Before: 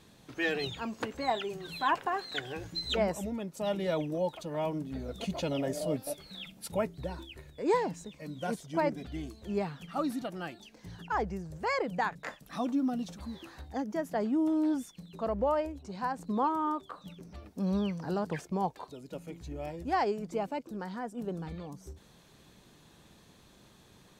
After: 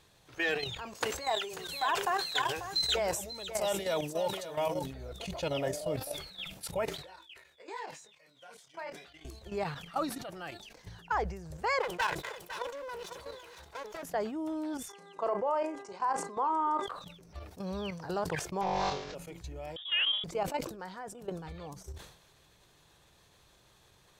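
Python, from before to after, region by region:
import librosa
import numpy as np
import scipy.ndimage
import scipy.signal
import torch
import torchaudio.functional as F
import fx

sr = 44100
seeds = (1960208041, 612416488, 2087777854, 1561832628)

y = fx.chain(x, sr, fx.bass_treble(bass_db=-4, treble_db=9),
    fx.echo_single(ms=540, db=-8.0), at=(0.95, 4.86))
y = fx.chain(y, sr, fx.highpass(hz=1500.0, slope=6),
    fx.high_shelf(hz=5800.0, db=-9.5),
    fx.detune_double(cents=10), at=(6.86, 9.25))
y = fx.chain(y, sr, fx.lower_of_two(delay_ms=2.0),
    fx.highpass(hz=280.0, slope=6),
    fx.echo_single(ms=504, db=-11.5), at=(11.8, 14.03))
y = fx.cabinet(y, sr, low_hz=240.0, low_slope=24, high_hz=9800.0, hz=(380.0, 1000.0, 1800.0, 3900.0), db=(4, 6, -4, -9), at=(14.88, 16.86), fade=0.02)
y = fx.dmg_buzz(y, sr, base_hz=400.0, harmonics=5, level_db=-57.0, tilt_db=-6, odd_only=False, at=(14.88, 16.86), fade=0.02)
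y = fx.doubler(y, sr, ms=35.0, db=-13.0, at=(14.88, 16.86), fade=0.02)
y = fx.chain(y, sr, fx.delta_mod(bps=32000, step_db=-44.5),
    fx.room_flutter(wall_m=3.6, rt60_s=0.76),
    fx.sustainer(db_per_s=34.0), at=(18.61, 19.15))
y = fx.chain(y, sr, fx.low_shelf(hz=400.0, db=-5.5),
    fx.freq_invert(carrier_hz=3600), at=(19.76, 20.24))
y = fx.level_steps(y, sr, step_db=11)
y = fx.peak_eq(y, sr, hz=230.0, db=-13.5, octaves=1.0)
y = fx.sustainer(y, sr, db_per_s=82.0)
y = y * 10.0 ** (5.0 / 20.0)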